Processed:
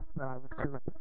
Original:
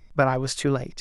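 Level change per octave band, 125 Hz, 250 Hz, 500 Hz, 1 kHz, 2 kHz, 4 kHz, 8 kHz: -14.0 dB, -13.0 dB, -16.5 dB, -16.5 dB, -15.5 dB, under -35 dB, under -40 dB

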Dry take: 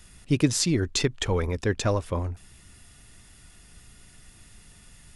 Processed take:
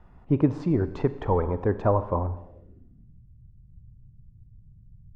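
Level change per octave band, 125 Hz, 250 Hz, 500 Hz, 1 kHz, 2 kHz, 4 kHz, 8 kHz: +0.5 dB, +1.0 dB, +2.5 dB, +6.0 dB, -9.5 dB, under -20 dB, under -35 dB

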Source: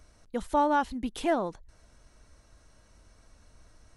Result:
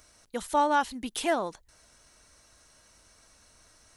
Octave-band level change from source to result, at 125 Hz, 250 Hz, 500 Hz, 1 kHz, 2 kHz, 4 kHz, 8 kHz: -5.5, -3.0, -0.5, +1.0, +3.0, +6.0, +9.0 dB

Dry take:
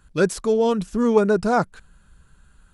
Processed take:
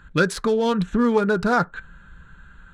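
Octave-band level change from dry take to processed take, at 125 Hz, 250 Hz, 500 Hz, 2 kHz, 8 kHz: +2.0 dB, +0.5 dB, -2.5 dB, +5.0 dB, n/a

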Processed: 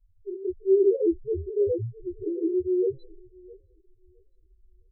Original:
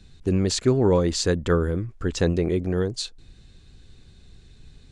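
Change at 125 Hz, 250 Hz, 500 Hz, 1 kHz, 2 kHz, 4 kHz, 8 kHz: -15.0 dB, -4.0 dB, 0.0 dB, under -40 dB, under -40 dB, under -40 dB, under -40 dB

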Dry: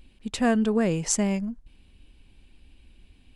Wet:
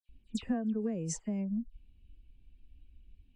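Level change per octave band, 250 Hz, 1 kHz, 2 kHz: -8.5, -16.5, -19.5 dB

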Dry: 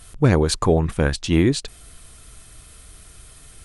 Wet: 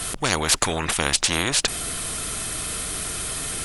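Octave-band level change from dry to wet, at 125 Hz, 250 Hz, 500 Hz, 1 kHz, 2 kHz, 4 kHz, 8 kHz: -11.0, -10.0, -8.0, +2.0, +5.0, +7.5, +11.5 dB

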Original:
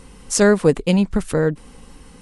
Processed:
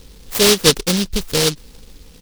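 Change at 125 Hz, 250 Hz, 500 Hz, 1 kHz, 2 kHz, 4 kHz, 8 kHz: -2.5, -3.5, -1.0, +1.5, +2.0, +16.0, +7.5 dB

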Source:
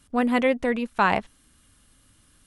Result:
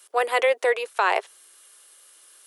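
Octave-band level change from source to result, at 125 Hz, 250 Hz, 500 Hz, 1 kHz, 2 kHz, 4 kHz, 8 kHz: under -40 dB, under -20 dB, +3.0 dB, +1.0 dB, +2.0 dB, +4.0 dB, n/a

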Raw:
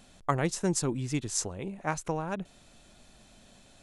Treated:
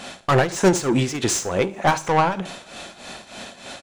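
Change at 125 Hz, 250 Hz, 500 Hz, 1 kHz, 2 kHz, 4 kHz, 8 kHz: +8.5, +10.0, +13.5, +14.0, +14.0, +12.5, +7.5 dB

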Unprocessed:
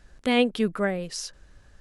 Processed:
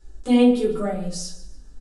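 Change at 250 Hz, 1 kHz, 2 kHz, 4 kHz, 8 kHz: +7.5, +0.5, -7.5, -2.5, +2.5 dB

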